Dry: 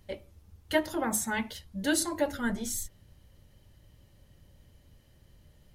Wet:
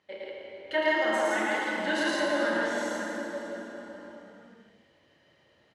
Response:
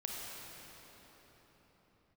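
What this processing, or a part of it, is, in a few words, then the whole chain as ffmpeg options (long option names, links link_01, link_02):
station announcement: -filter_complex "[0:a]highpass=390,lowpass=3700,equalizer=frequency=1900:width_type=o:width=0.42:gain=4,aecho=1:1:32.07|110.8|166.2:0.501|0.891|0.891[link_01];[1:a]atrim=start_sample=2205[link_02];[link_01][link_02]afir=irnorm=-1:irlink=0"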